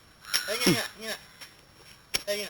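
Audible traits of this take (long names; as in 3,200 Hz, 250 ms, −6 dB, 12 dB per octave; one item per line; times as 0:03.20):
a buzz of ramps at a fixed pitch in blocks of 8 samples
Opus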